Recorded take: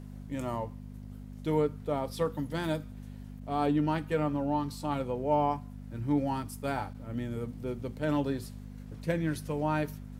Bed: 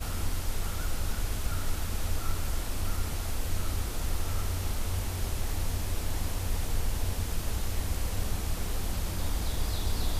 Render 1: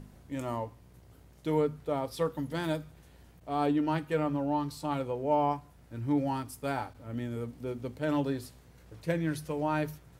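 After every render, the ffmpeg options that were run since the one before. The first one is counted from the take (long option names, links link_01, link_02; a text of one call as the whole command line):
ffmpeg -i in.wav -af "bandreject=frequency=50:width_type=h:width=4,bandreject=frequency=100:width_type=h:width=4,bandreject=frequency=150:width_type=h:width=4,bandreject=frequency=200:width_type=h:width=4,bandreject=frequency=250:width_type=h:width=4" out.wav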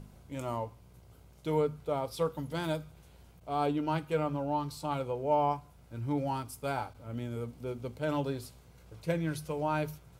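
ffmpeg -i in.wav -af "equalizer=frequency=280:width=2.7:gain=-5.5,bandreject=frequency=1800:width=6" out.wav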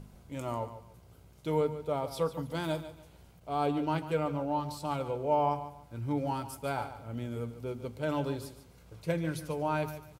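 ffmpeg -i in.wav -af "aecho=1:1:145|290|435:0.237|0.0617|0.016" out.wav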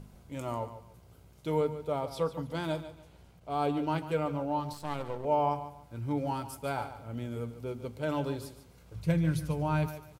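ffmpeg -i in.wav -filter_complex "[0:a]asettb=1/sr,asplit=3[link_01][link_02][link_03];[link_01]atrim=end=2.054[link_04];[link_02]atrim=start=2.05:end=3.5,asetpts=PTS-STARTPTS,afade=type=in:duration=0.004:curve=qsin,afade=type=out:start_time=1.446:duration=0.004:curve=qsin,highshelf=frequency=8800:gain=-7.5[link_05];[link_03]atrim=start=3.496[link_06];[link_04][link_05]acrossfade=duration=0.004:curve1=hsin:curve2=qsin[link_07];[link_07][link_06]acrossfade=duration=0.004:curve1=qsin:curve2=hsin,asettb=1/sr,asplit=3[link_08][link_09][link_10];[link_08]atrim=end=4.734[link_11];[link_09]atrim=start=4.73:end=5.25,asetpts=PTS-STARTPTS,afade=type=in:duration=0.004:curve=qsin,afade=type=out:start_time=0.516:duration=0.004:curve=qsin,aeval=exprs='if(lt(val(0),0),0.251*val(0),val(0))':channel_layout=same[link_12];[link_10]atrim=start=5.246[link_13];[link_11][link_12]acrossfade=duration=0.004:curve1=hsin:curve2=qsin[link_14];[link_14][link_13]acrossfade=duration=0.004:curve1=qsin:curve2=hsin,asplit=3[link_15][link_16][link_17];[link_15]afade=type=out:start_time=8.94:duration=0.02[link_18];[link_16]asubboost=boost=4:cutoff=190,afade=type=in:start_time=8.94:duration=0.02,afade=type=out:start_time=9.86:duration=0.02[link_19];[link_17]afade=type=in:start_time=9.86:duration=0.02[link_20];[link_18][link_19][link_20]amix=inputs=3:normalize=0" out.wav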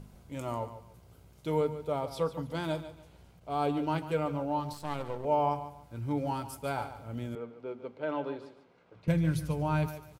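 ffmpeg -i in.wav -filter_complex "[0:a]asettb=1/sr,asplit=3[link_01][link_02][link_03];[link_01]atrim=end=7.354[link_04];[link_02]atrim=start=7.35:end=9.08,asetpts=PTS-STARTPTS,afade=type=in:duration=0.004:curve=qsin,afade=type=out:start_time=1.726:duration=0.004:curve=qsin,highpass=290,lowpass=2400[link_05];[link_03]atrim=start=9.076[link_06];[link_04][link_05]acrossfade=duration=0.004:curve1=hsin:curve2=qsin[link_07];[link_07][link_06]acrossfade=duration=0.004:curve1=qsin:curve2=hsin" out.wav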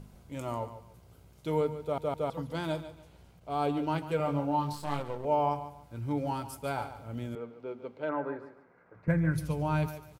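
ffmpeg -i in.wav -filter_complex "[0:a]asettb=1/sr,asplit=3[link_01][link_02][link_03];[link_01]atrim=end=4.174[link_04];[link_02]atrim=start=4.17:end=5,asetpts=PTS-STARTPTS,afade=type=in:duration=0.004:curve=qsin,afade=type=out:start_time=0.826:duration=0.004:curve=qsin,asplit=2[link_05][link_06];[link_06]adelay=28,volume=-3dB[link_07];[link_05][link_07]amix=inputs=2:normalize=0,atrim=end_sample=36603[link_08];[link_03]atrim=start=4.996[link_09];[link_04][link_08]acrossfade=duration=0.004:curve1=hsin:curve2=qsin[link_10];[link_10][link_09]acrossfade=duration=0.004:curve1=qsin:curve2=hsin,asettb=1/sr,asplit=3[link_11][link_12][link_13];[link_11]atrim=end=8.094[link_14];[link_12]atrim=start=8.09:end=9.38,asetpts=PTS-STARTPTS,afade=type=in:duration=0.004:curve=qsin,afade=type=out:start_time=1.286:duration=0.004:curve=qsin,highshelf=frequency=2400:width_type=q:width=3:gain=-10.5[link_15];[link_13]atrim=start=9.376[link_16];[link_14][link_15]acrossfade=duration=0.004:curve1=hsin:curve2=qsin[link_17];[link_17][link_16]acrossfade=duration=0.004:curve1=qsin:curve2=hsin,asplit=4[link_18][link_19][link_20][link_21];[link_18]atrim=end=1.982[link_22];[link_19]atrim=start=1.818:end=1.982[link_23];[link_20]atrim=start=1.818:end=1.982[link_24];[link_21]atrim=start=2.298[link_25];[link_22][link_23]acrossfade=duration=0.004:curve1=hsin:curve2=hsin[link_26];[link_26][link_24]acrossfade=duration=0.004:curve1=hsin:curve2=hsin[link_27];[link_27][link_25]acrossfade=duration=0.004:curve1=hsin:curve2=hsin" out.wav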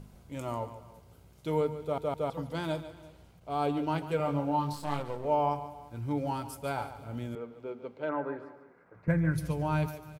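ffmpeg -i in.wav -af "aecho=1:1:348:0.0841" out.wav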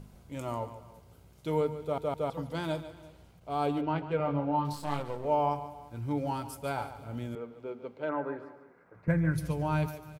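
ffmpeg -i in.wav -filter_complex "[0:a]asettb=1/sr,asplit=3[link_01][link_02][link_03];[link_01]atrim=end=3.814[link_04];[link_02]atrim=start=3.81:end=4.65,asetpts=PTS-STARTPTS,afade=type=in:duration=0.004:curve=qsin,afade=type=out:start_time=0.836:duration=0.004:curve=qsin,lowpass=2900[link_05];[link_03]atrim=start=4.646[link_06];[link_04][link_05]acrossfade=duration=0.004:curve1=hsin:curve2=qsin[link_07];[link_07][link_06]acrossfade=duration=0.004:curve1=qsin:curve2=hsin" out.wav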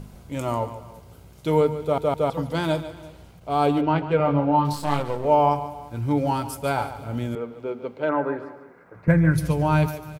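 ffmpeg -i in.wav -af "volume=9.5dB" out.wav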